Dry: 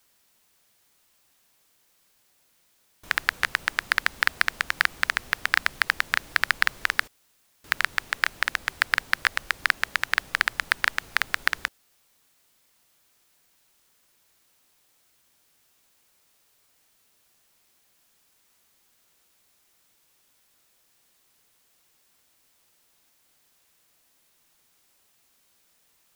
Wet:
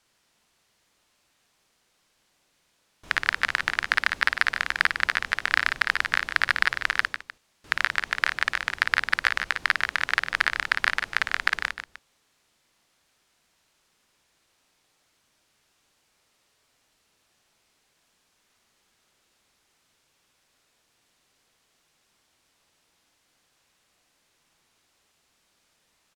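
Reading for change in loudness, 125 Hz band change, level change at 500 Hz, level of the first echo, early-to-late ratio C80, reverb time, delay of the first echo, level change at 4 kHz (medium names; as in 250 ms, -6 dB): +0.5 dB, +1.5 dB, +1.5 dB, -6.0 dB, no reverb, no reverb, 55 ms, 0.0 dB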